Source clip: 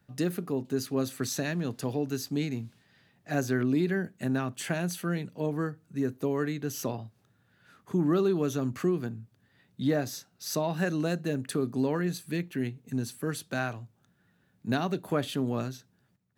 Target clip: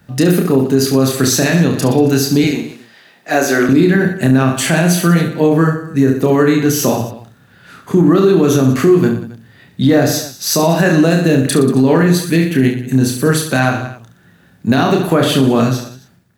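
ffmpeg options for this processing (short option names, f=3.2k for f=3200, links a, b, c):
-filter_complex "[0:a]asettb=1/sr,asplit=3[a][b][c];[a]atrim=end=2.444[d];[b]atrim=start=2.44:end=3.69,asetpts=PTS-STARTPTS,afade=t=in:d=0.004:c=qsin,afade=t=out:st=1.246:d=0.004:c=qsin,highpass=350[e];[c]atrim=start=3.686[f];[d][e]acrossfade=d=0.004:c1=hsin:c2=qsin[g];[g][f]acrossfade=d=0.004:c1=qsin:c2=hsin,asplit=2[h][i];[i]aecho=0:1:30|69|119.7|185.6|271.3:0.631|0.398|0.251|0.158|0.1[j];[h][j]amix=inputs=2:normalize=0,alimiter=level_in=19.5dB:limit=-1dB:release=50:level=0:latency=1,volume=-1.5dB"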